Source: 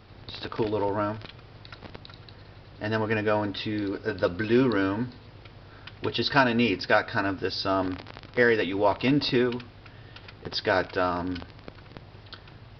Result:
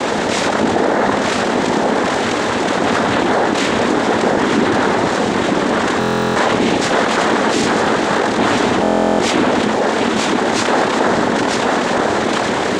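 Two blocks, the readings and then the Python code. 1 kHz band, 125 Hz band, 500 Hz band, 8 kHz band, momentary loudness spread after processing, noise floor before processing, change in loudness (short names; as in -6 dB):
+16.0 dB, +8.5 dB, +12.0 dB, n/a, 2 LU, -50 dBFS, +11.0 dB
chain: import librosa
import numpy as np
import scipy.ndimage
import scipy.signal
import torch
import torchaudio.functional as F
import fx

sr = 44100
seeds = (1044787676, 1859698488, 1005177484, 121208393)

p1 = fx.bin_compress(x, sr, power=0.4)
p2 = fx.chorus_voices(p1, sr, voices=2, hz=0.92, base_ms=25, depth_ms=3.0, mix_pct=55)
p3 = scipy.signal.sosfilt(scipy.signal.butter(2, 410.0, 'highpass', fs=sr, output='sos'), p2)
p4 = fx.high_shelf(p3, sr, hz=3100.0, db=8.5)
p5 = p4 + fx.echo_single(p4, sr, ms=945, db=-5.0, dry=0)
p6 = fx.noise_vocoder(p5, sr, seeds[0], bands=6)
p7 = fx.tilt_eq(p6, sr, slope=-3.5)
p8 = fx.buffer_glitch(p7, sr, at_s=(5.99, 8.82), block=1024, repeats=15)
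p9 = fx.env_flatten(p8, sr, amount_pct=70)
y = p9 * librosa.db_to_amplitude(1.5)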